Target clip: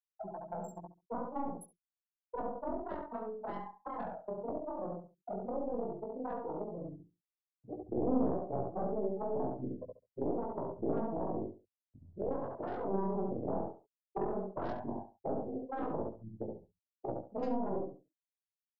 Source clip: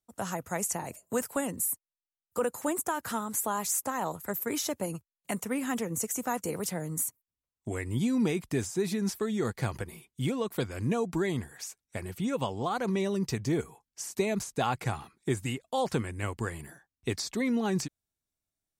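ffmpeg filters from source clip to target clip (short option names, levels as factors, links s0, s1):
-filter_complex "[0:a]afftfilt=real='re':imag='-im':win_size=4096:overlap=0.75,aeval=exprs='val(0)+0.00282*(sin(2*PI*50*n/s)+sin(2*PI*2*50*n/s)/2+sin(2*PI*3*50*n/s)/3+sin(2*PI*4*50*n/s)/4+sin(2*PI*5*50*n/s)/5)':c=same,afftfilt=real='re*gte(hypot(re,im),0.0794)':imag='im*gte(hypot(re,im),0.0794)':win_size=1024:overlap=0.75,aeval=exprs='0.0944*(cos(1*acos(clip(val(0)/0.0944,-1,1)))-cos(1*PI/2))+0.00531*(cos(3*acos(clip(val(0)/0.0944,-1,1)))-cos(3*PI/2))+0.0473*(cos(6*acos(clip(val(0)/0.0944,-1,1)))-cos(6*PI/2))+0.0335*(cos(7*acos(clip(val(0)/0.0944,-1,1)))-cos(7*PI/2))':c=same,firequalizer=gain_entry='entry(120,0);entry(650,11);entry(2300,-20);entry(5100,-11)':delay=0.05:min_phase=1,acrossover=split=350|530|2000[s0][s1][s2][s3];[s1]dynaudnorm=f=220:g=21:m=2.24[s4];[s0][s4][s2][s3]amix=inputs=4:normalize=0,asplit=2[s5][s6];[s6]adelay=69,lowpass=f=1800:p=1,volume=0.708,asplit=2[s7][s8];[s8]adelay=69,lowpass=f=1800:p=1,volume=0.19,asplit=2[s9][s10];[s10]adelay=69,lowpass=f=1800:p=1,volume=0.19[s11];[s5][s7][s9][s11]amix=inputs=4:normalize=0,flanger=delay=15.5:depth=6.2:speed=0.11,aemphasis=mode=production:type=bsi,acrossover=split=280|3000[s12][s13][s14];[s13]acompressor=threshold=0.00891:ratio=5[s15];[s12][s15][s14]amix=inputs=3:normalize=0,volume=1.12"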